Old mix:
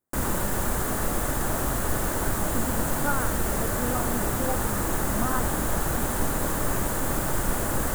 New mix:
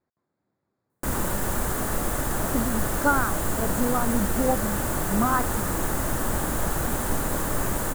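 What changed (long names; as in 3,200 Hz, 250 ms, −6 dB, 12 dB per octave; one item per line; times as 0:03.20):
speech +7.0 dB
background: entry +0.90 s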